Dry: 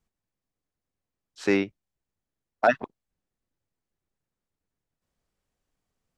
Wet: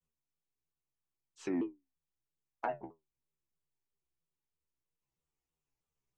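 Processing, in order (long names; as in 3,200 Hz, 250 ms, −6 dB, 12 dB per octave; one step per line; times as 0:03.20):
EQ curve with evenly spaced ripples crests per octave 0.72, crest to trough 8 dB
treble cut that deepens with the level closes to 830 Hz, closed at −22.5 dBFS
dynamic equaliser 1,700 Hz, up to +4 dB, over −44 dBFS, Q 1.2
stiff-string resonator 72 Hz, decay 0.24 s, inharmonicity 0.002
pitch modulation by a square or saw wave saw down 3.1 Hz, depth 250 cents
level −5 dB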